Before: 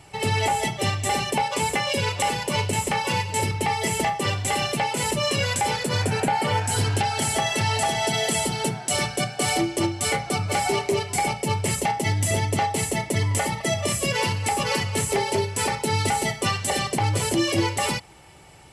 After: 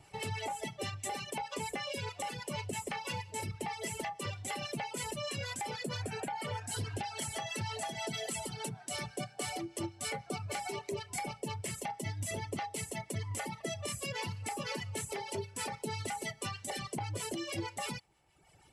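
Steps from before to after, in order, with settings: reverb removal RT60 1.1 s; compression 3:1, threshold -25 dBFS, peak gain reduction 6 dB; harmonic tremolo 6.3 Hz, depth 50%, crossover 900 Hz; trim -8 dB

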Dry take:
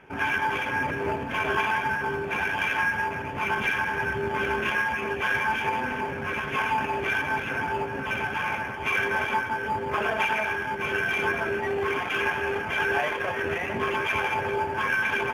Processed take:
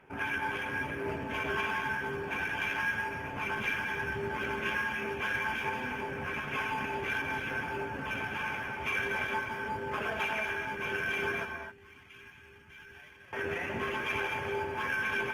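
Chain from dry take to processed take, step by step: 11.45–13.33 s: amplifier tone stack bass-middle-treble 6-0-2; gated-style reverb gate 280 ms rising, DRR 7.5 dB; dynamic bell 820 Hz, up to -4 dB, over -32 dBFS, Q 1.1; trim -6 dB; Opus 32 kbps 48 kHz

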